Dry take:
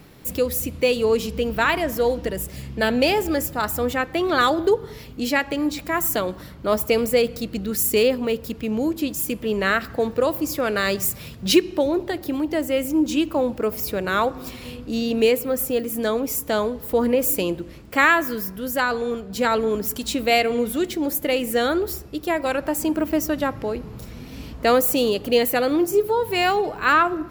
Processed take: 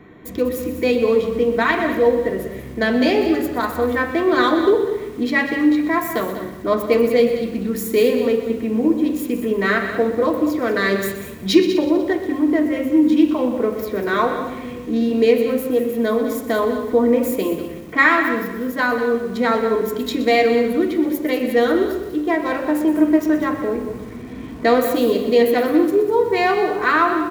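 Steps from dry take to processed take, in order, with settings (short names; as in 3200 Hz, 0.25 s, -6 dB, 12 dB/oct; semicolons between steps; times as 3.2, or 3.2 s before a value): Wiener smoothing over 9 samples; in parallel at -3 dB: compressor 4:1, threshold -31 dBFS, peak gain reduction 17 dB; on the sum: echo 0.194 s -11 dB; reverb RT60 0.60 s, pre-delay 3 ms, DRR 0 dB; lo-fi delay 0.123 s, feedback 55%, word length 5-bit, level -12 dB; gain -9 dB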